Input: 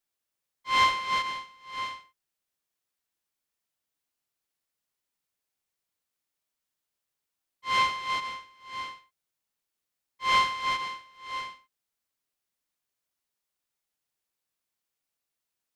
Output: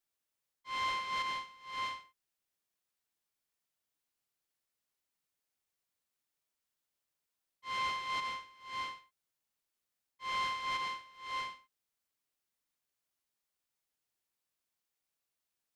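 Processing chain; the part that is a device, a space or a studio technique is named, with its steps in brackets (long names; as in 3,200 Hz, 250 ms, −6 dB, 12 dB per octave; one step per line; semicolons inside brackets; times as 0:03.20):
compression on the reversed sound (reversed playback; downward compressor 8 to 1, threshold −30 dBFS, peak gain reduction 12.5 dB; reversed playback)
level −2.5 dB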